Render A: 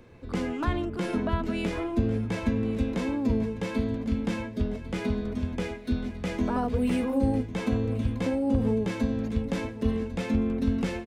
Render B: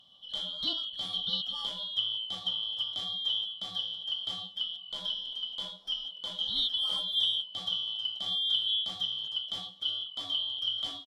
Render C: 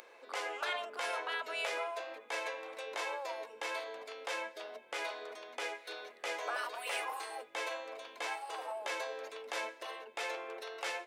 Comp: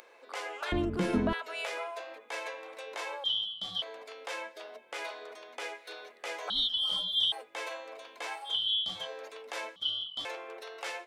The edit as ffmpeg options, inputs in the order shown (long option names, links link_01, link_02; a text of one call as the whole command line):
ffmpeg -i take0.wav -i take1.wav -i take2.wav -filter_complex "[1:a]asplit=4[link_01][link_02][link_03][link_04];[2:a]asplit=6[link_05][link_06][link_07][link_08][link_09][link_10];[link_05]atrim=end=0.722[link_11];[0:a]atrim=start=0.718:end=1.332[link_12];[link_06]atrim=start=1.328:end=3.242[link_13];[link_01]atrim=start=3.238:end=3.822[link_14];[link_07]atrim=start=3.818:end=6.502[link_15];[link_02]atrim=start=6.498:end=7.322[link_16];[link_08]atrim=start=7.318:end=8.6[link_17];[link_03]atrim=start=8.44:end=9.09[link_18];[link_09]atrim=start=8.93:end=9.762[link_19];[link_04]atrim=start=9.758:end=10.252[link_20];[link_10]atrim=start=10.248[link_21];[link_11][link_12]acrossfade=duration=0.004:curve1=hsin:curve2=hsin[link_22];[link_22][link_13]acrossfade=duration=0.004:curve1=hsin:curve2=hsin[link_23];[link_23][link_14]acrossfade=duration=0.004:curve1=hsin:curve2=hsin[link_24];[link_24][link_15]acrossfade=duration=0.004:curve1=hsin:curve2=hsin[link_25];[link_25][link_16]acrossfade=duration=0.004:curve1=hsin:curve2=hsin[link_26];[link_26][link_17]acrossfade=duration=0.004:curve1=hsin:curve2=hsin[link_27];[link_27][link_18]acrossfade=duration=0.16:curve1=tri:curve2=tri[link_28];[link_28][link_19]acrossfade=duration=0.16:curve1=tri:curve2=tri[link_29];[link_29][link_20]acrossfade=duration=0.004:curve1=hsin:curve2=hsin[link_30];[link_30][link_21]acrossfade=duration=0.004:curve1=hsin:curve2=hsin" out.wav